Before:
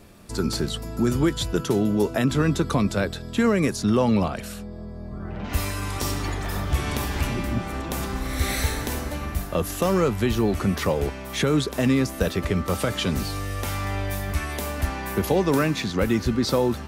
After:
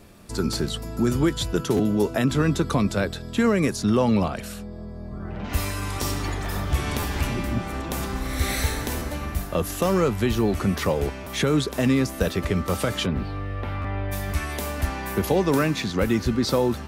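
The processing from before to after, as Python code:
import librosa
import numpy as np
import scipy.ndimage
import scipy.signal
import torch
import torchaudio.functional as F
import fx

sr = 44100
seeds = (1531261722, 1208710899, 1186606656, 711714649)

y = fx.air_absorb(x, sr, metres=420.0, at=(13.05, 14.11), fade=0.02)
y = fx.buffer_glitch(y, sr, at_s=(1.76, 6.99, 8.98, 11.23, 13.81), block=512, repeats=2)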